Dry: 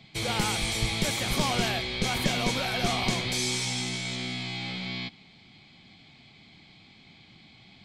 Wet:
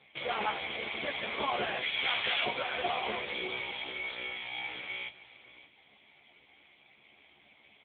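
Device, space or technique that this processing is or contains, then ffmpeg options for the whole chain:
satellite phone: -filter_complex "[0:a]highpass=190,asplit=3[link_01][link_02][link_03];[link_01]afade=type=out:start_time=1.81:duration=0.02[link_04];[link_02]tiltshelf=frequency=970:gain=-8.5,afade=type=in:start_time=1.81:duration=0.02,afade=type=out:start_time=2.44:duration=0.02[link_05];[link_03]afade=type=in:start_time=2.44:duration=0.02[link_06];[link_04][link_05][link_06]amix=inputs=3:normalize=0,highpass=370,lowpass=3400,asplit=2[link_07][link_08];[link_08]adelay=14,volume=-3.5dB[link_09];[link_07][link_09]amix=inputs=2:normalize=0,aecho=1:1:287:0.133,aecho=1:1:557:0.168" -ar 8000 -c:a libopencore_amrnb -b:a 5900

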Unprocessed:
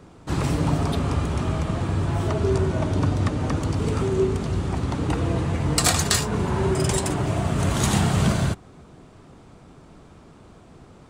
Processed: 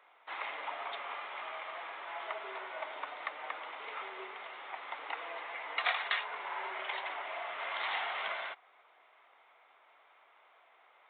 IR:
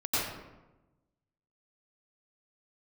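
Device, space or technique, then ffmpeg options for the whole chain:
musical greeting card: -af "aresample=8000,aresample=44100,highpass=frequency=710:width=0.5412,highpass=frequency=710:width=1.3066,equalizer=frequency=2100:width_type=o:width=0.25:gain=10,volume=-7.5dB"

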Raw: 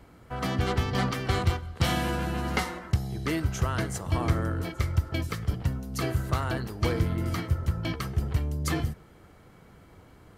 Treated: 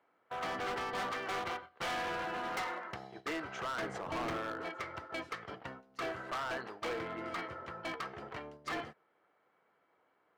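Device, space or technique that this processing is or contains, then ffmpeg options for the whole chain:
walkie-talkie: -filter_complex "[0:a]asettb=1/sr,asplit=3[link_01][link_02][link_03];[link_01]atrim=end=3.824[link_04];[link_02]atrim=start=3.82:end=4.37,asetpts=PTS-STARTPTS,afade=type=in:duration=0.004:curve=qsin,afade=type=out:start_time=0.546:duration=0.004:curve=qsin,lowshelf=frequency=430:gain=9.5[link_05];[link_03]atrim=start=4.366[link_06];[link_04][link_05]acrossfade=duration=0.004:curve1=hsin:curve2=qsin[link_07];[link_07][link_06]acrossfade=duration=0.004:curve1=qsin:curve2=hsin,highpass=570,lowpass=2300,asoftclip=type=hard:threshold=-35dB,agate=range=-14dB:threshold=-48dB:ratio=16:detection=peak,volume=1dB"

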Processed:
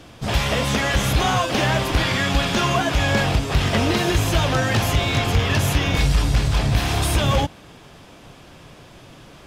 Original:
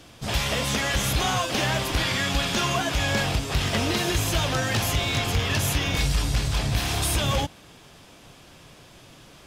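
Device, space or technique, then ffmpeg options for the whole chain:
behind a face mask: -af "highshelf=frequency=3100:gain=-7.5,volume=6dB"

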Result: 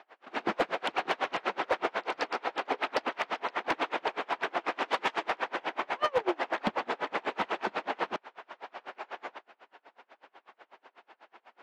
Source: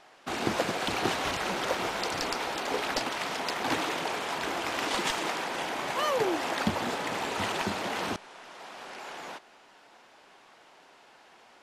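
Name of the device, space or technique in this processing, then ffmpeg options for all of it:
helicopter radio: -af "highpass=330,lowpass=2500,aeval=exprs='val(0)*pow(10,-32*(0.5-0.5*cos(2*PI*8.1*n/s))/20)':channel_layout=same,asoftclip=type=hard:threshold=-25.5dB,volume=6.5dB"

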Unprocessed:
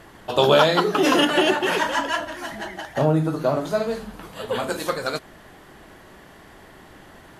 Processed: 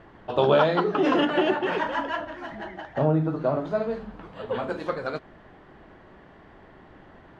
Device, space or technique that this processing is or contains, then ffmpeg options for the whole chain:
phone in a pocket: -af "lowpass=3700,highshelf=frequency=2400:gain=-10,volume=-2.5dB"

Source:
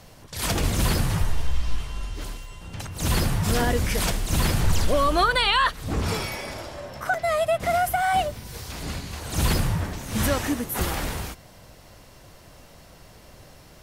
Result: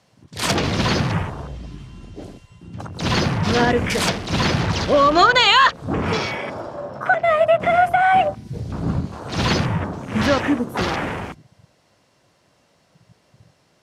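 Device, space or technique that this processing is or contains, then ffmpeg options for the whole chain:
over-cleaned archive recording: -filter_complex "[0:a]bandreject=frequency=76.95:width_type=h:width=4,bandreject=frequency=153.9:width_type=h:width=4,bandreject=frequency=230.85:width_type=h:width=4,bandreject=frequency=307.8:width_type=h:width=4,bandreject=frequency=384.75:width_type=h:width=4,bandreject=frequency=461.7:width_type=h:width=4,bandreject=frequency=538.65:width_type=h:width=4,bandreject=frequency=615.6:width_type=h:width=4,bandreject=frequency=692.55:width_type=h:width=4,bandreject=frequency=769.5:width_type=h:width=4,bandreject=frequency=846.45:width_type=h:width=4,asettb=1/sr,asplit=3[link_01][link_02][link_03];[link_01]atrim=end=8.504[link_04];[link_02]atrim=start=8.5:end=9.05,asetpts=PTS-STARTPTS,afade=type=in:duration=0.004:curve=qsin,afade=type=out:start_time=0.546:duration=0.004:curve=qsin,bass=frequency=250:gain=11,treble=frequency=4000:gain=-2[link_05];[link_03]atrim=start=9.046[link_06];[link_04][link_05]acrossfade=duration=0.004:curve1=hsin:curve2=qsin[link_07];[link_07][link_06]acrossfade=duration=0.004:curve1=qsin:curve2=hsin,highpass=130,lowpass=8000,afwtdn=0.0141,volume=7.5dB"

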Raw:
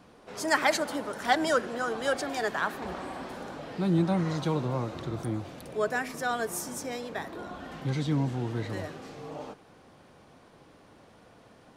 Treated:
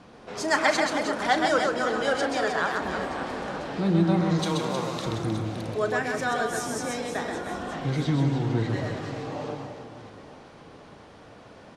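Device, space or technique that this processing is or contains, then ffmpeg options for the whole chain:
parallel compression: -filter_complex "[0:a]lowpass=7300,asettb=1/sr,asplit=3[link_01][link_02][link_03];[link_01]atrim=end=4.394[link_04];[link_02]atrim=start=4.39:end=5.06,asetpts=PTS-STARTPTS,afade=type=in:duration=0.004:curve=qsin,afade=type=out:start_time=0.666:duration=0.004:curve=qsin,aemphasis=mode=production:type=riaa[link_05];[link_03]atrim=start=5.056[link_06];[link_04][link_05]acrossfade=duration=0.004:curve1=hsin:curve2=qsin[link_07];[link_07][link_06]acrossfade=duration=0.004:curve1=qsin:curve2=hsin,asplit=2[link_08][link_09];[link_09]acompressor=threshold=-37dB:ratio=6,volume=-2dB[link_10];[link_08][link_10]amix=inputs=2:normalize=0,asplit=2[link_11][link_12];[link_12]adelay=36,volume=-12.5dB[link_13];[link_11][link_13]amix=inputs=2:normalize=0,aecho=1:1:130|312|566.8|923.5|1423:0.631|0.398|0.251|0.158|0.1"

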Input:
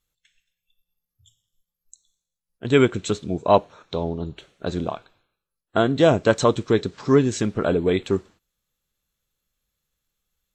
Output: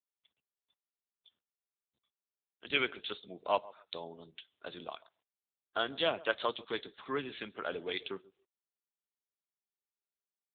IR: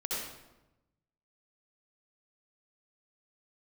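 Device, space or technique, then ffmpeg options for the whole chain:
mobile call with aggressive noise cancelling: -filter_complex "[0:a]asettb=1/sr,asplit=3[link_01][link_02][link_03];[link_01]atrim=end=6.074[link_04];[link_02]atrim=start=6.07:end=7.9,asetpts=PTS-STARTPTS,afade=type=in:duration=0.004:curve=qsin,afade=type=out:start_time=1.826:duration=0.004:curve=qsin,highpass=frequency=72:width=0.5412,highpass=frequency=72:width=1.3066[link_05];[link_03]atrim=start=7.896[link_06];[link_04][link_05]acrossfade=duration=0.004:curve1=hsin:curve2=qsin[link_07];[link_07][link_06]acrossfade=duration=0.004:curve1=qsin:curve2=hsin,highpass=frequency=110:width=0.5412,highpass=frequency=110:width=1.3066,aderivative,asplit=2[link_08][link_09];[link_09]adelay=136,lowpass=frequency=1100:poles=1,volume=-19dB,asplit=2[link_10][link_11];[link_11]adelay=136,lowpass=frequency=1100:poles=1,volume=0.26[link_12];[link_08][link_10][link_12]amix=inputs=3:normalize=0,afftdn=noise_reduction=35:noise_floor=-62,volume=6dB" -ar 8000 -c:a libopencore_amrnb -b:a 7950

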